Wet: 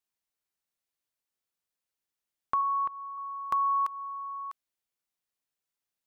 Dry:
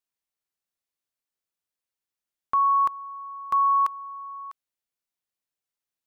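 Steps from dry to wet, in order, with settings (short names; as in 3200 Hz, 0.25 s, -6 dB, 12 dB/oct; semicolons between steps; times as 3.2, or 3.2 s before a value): compressor 4:1, threshold -26 dBFS, peak gain reduction 6 dB; 2.61–3.18 air absorption 370 m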